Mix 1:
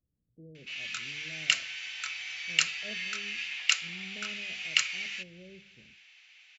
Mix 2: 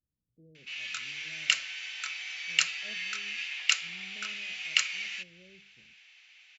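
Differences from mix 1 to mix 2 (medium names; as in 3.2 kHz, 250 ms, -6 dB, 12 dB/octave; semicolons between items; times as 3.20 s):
speech -6.5 dB; reverb: off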